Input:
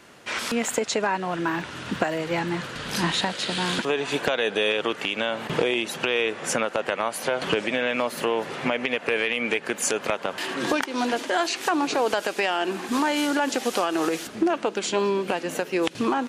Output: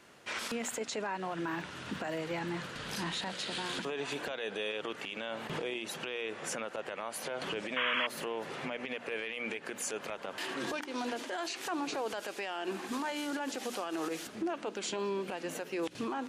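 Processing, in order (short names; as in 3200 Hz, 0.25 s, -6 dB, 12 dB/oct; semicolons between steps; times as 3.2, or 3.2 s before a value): notches 60/120/180/240/300 Hz; limiter -19 dBFS, peak gain reduction 10 dB; painted sound noise, 7.76–8.07, 930–3400 Hz -24 dBFS; gain -8 dB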